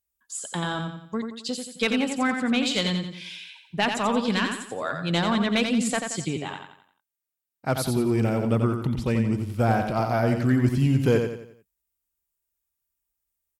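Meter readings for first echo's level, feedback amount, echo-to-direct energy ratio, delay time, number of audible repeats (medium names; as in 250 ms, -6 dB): -6.0 dB, 41%, -5.0 dB, 88 ms, 4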